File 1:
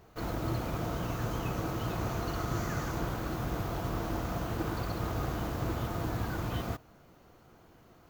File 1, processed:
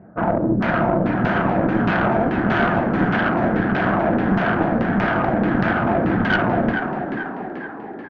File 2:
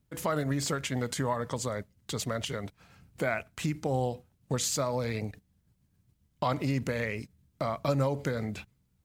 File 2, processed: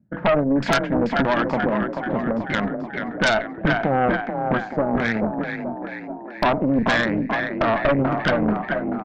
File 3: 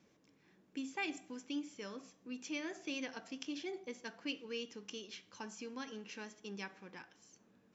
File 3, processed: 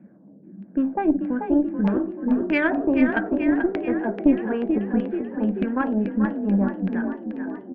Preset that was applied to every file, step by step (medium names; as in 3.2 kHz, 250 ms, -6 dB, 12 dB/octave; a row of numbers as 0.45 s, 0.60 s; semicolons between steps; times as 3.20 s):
level-controlled noise filter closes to 410 Hz, open at -28.5 dBFS; in parallel at -1 dB: compression 6:1, threshold -39 dBFS; on the sum: LFO low-pass saw down 1.6 Hz 210–2500 Hz; cabinet simulation 160–6300 Hz, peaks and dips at 200 Hz +10 dB, 430 Hz -9 dB, 640 Hz +5 dB, 1.1 kHz -5 dB, 1.6 kHz +10 dB; on a send: frequency-shifting echo 435 ms, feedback 59%, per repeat +32 Hz, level -6.5 dB; on the sum: Chebyshev shaper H 5 -6 dB, 6 -8 dB, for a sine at -9 dBFS; peak normalisation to -6 dBFS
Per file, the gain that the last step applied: -0.5 dB, -4.0 dB, +3.5 dB